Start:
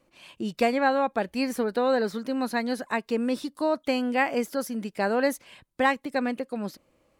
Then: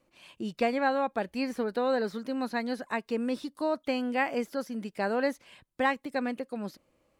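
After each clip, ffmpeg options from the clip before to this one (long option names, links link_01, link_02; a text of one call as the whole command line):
ffmpeg -i in.wav -filter_complex "[0:a]acrossover=split=5200[link_01][link_02];[link_02]acompressor=threshold=-49dB:ratio=4:attack=1:release=60[link_03];[link_01][link_03]amix=inputs=2:normalize=0,volume=-4dB" out.wav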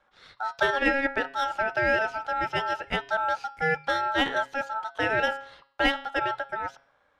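ffmpeg -i in.wav -af "bandreject=frequency=139.1:width_type=h:width=4,bandreject=frequency=278.2:width_type=h:width=4,bandreject=frequency=417.3:width_type=h:width=4,bandreject=frequency=556.4:width_type=h:width=4,bandreject=frequency=695.5:width_type=h:width=4,bandreject=frequency=834.6:width_type=h:width=4,bandreject=frequency=973.7:width_type=h:width=4,bandreject=frequency=1112.8:width_type=h:width=4,bandreject=frequency=1251.9:width_type=h:width=4,bandreject=frequency=1391:width_type=h:width=4,bandreject=frequency=1530.1:width_type=h:width=4,bandreject=frequency=1669.2:width_type=h:width=4,bandreject=frequency=1808.3:width_type=h:width=4,bandreject=frequency=1947.4:width_type=h:width=4,bandreject=frequency=2086.5:width_type=h:width=4,bandreject=frequency=2225.6:width_type=h:width=4,bandreject=frequency=2364.7:width_type=h:width=4,bandreject=frequency=2503.8:width_type=h:width=4,bandreject=frequency=2642.9:width_type=h:width=4,bandreject=frequency=2782:width_type=h:width=4,bandreject=frequency=2921.1:width_type=h:width=4,bandreject=frequency=3060.2:width_type=h:width=4,bandreject=frequency=3199.3:width_type=h:width=4,bandreject=frequency=3338.4:width_type=h:width=4,bandreject=frequency=3477.5:width_type=h:width=4,bandreject=frequency=3616.6:width_type=h:width=4,bandreject=frequency=3755.7:width_type=h:width=4,bandreject=frequency=3894.8:width_type=h:width=4,bandreject=frequency=4033.9:width_type=h:width=4,bandreject=frequency=4173:width_type=h:width=4,bandreject=frequency=4312.1:width_type=h:width=4,bandreject=frequency=4451.2:width_type=h:width=4,bandreject=frequency=4590.3:width_type=h:width=4,adynamicsmooth=sensitivity=7.5:basefreq=4400,aeval=exprs='val(0)*sin(2*PI*1100*n/s)':channel_layout=same,volume=6.5dB" out.wav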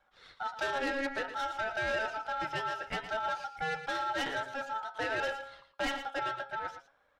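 ffmpeg -i in.wav -filter_complex "[0:a]flanger=delay=1.3:depth=6.3:regen=58:speed=0.55:shape=sinusoidal,asoftclip=type=tanh:threshold=-28dB,asplit=2[link_01][link_02];[link_02]aecho=0:1:114:0.282[link_03];[link_01][link_03]amix=inputs=2:normalize=0" out.wav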